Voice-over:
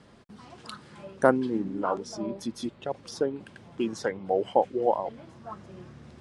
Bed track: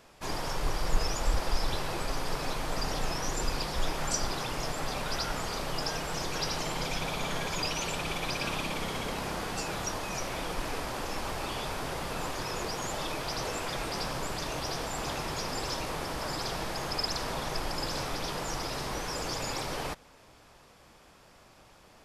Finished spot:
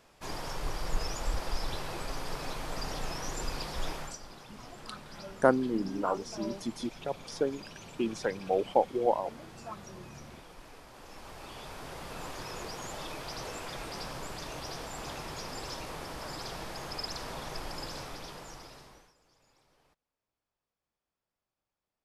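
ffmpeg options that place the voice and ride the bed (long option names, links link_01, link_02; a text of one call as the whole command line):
ffmpeg -i stem1.wav -i stem2.wav -filter_complex "[0:a]adelay=4200,volume=-2.5dB[link_01];[1:a]volume=6.5dB,afade=type=out:start_time=3.92:duration=0.26:silence=0.237137,afade=type=in:start_time=10.9:duration=1.44:silence=0.281838,afade=type=out:start_time=17.77:duration=1.37:silence=0.0375837[link_02];[link_01][link_02]amix=inputs=2:normalize=0" out.wav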